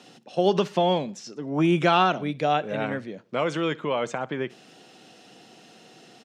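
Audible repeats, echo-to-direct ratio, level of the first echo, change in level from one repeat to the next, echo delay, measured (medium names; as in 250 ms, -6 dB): 2, -22.0 dB, -23.0 dB, -7.5 dB, 63 ms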